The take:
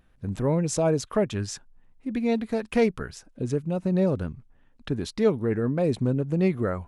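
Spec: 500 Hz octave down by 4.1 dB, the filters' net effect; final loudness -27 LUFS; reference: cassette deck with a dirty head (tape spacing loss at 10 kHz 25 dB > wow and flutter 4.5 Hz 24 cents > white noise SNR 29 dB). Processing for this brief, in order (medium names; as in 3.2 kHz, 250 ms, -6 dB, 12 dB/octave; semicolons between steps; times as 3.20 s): tape spacing loss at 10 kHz 25 dB; peaking EQ 500 Hz -3.5 dB; wow and flutter 4.5 Hz 24 cents; white noise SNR 29 dB; trim +1.5 dB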